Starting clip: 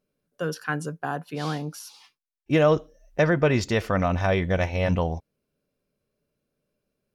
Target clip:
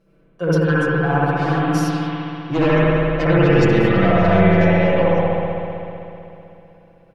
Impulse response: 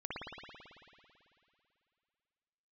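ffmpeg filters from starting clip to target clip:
-filter_complex "[0:a]lowpass=f=1.9k:p=1,aeval=exprs='0.355*sin(PI/2*2.51*val(0)/0.355)':c=same,areverse,acompressor=threshold=-29dB:ratio=4,areverse,aecho=1:1:6:0.98[a];[1:a]atrim=start_sample=2205,asetrate=38367,aresample=44100[b];[a][b]afir=irnorm=-1:irlink=0,volume=7.5dB"

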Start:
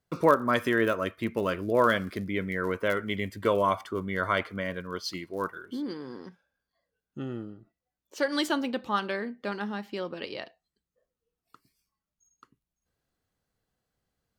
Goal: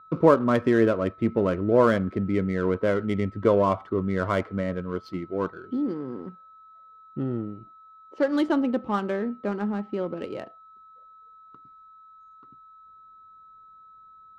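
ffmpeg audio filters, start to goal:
-af "tiltshelf=f=1.1k:g=8,aeval=exprs='val(0)+0.00501*sin(2*PI*1300*n/s)':c=same,adynamicsmooth=sensitivity=5:basefreq=2k"

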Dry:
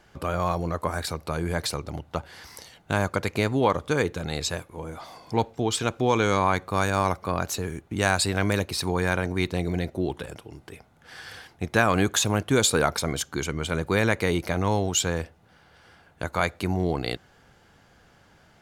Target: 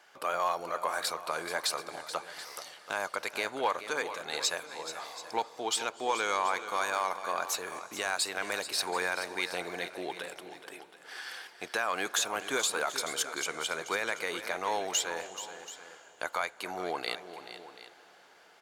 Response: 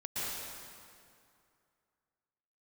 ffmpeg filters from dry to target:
-filter_complex "[0:a]highpass=670,alimiter=limit=-16.5dB:level=0:latency=1:release=409,asoftclip=type=tanh:threshold=-16.5dB,aecho=1:1:430|731:0.251|0.158,asplit=2[a][b];[1:a]atrim=start_sample=2205,asetrate=22491,aresample=44100[c];[b][c]afir=irnorm=-1:irlink=0,volume=-27dB[d];[a][d]amix=inputs=2:normalize=0"

